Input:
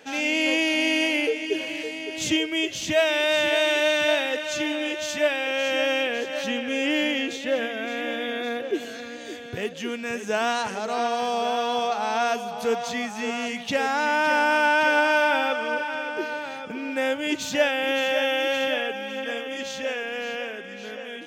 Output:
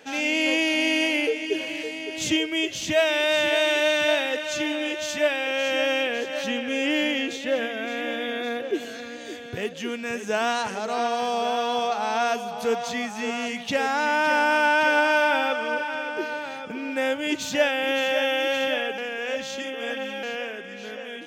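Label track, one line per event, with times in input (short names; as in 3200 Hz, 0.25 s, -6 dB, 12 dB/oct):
18.980000	20.230000	reverse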